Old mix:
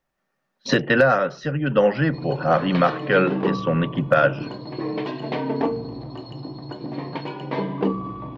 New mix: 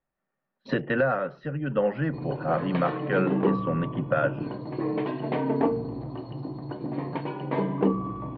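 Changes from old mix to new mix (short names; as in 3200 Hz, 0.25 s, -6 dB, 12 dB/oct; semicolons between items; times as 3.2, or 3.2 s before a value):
speech -6.0 dB; master: add air absorption 400 m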